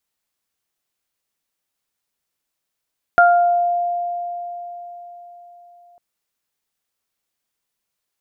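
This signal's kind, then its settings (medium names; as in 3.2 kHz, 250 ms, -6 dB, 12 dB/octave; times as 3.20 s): additive tone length 2.80 s, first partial 700 Hz, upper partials 0.5 dB, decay 4.36 s, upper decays 0.61 s, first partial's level -9 dB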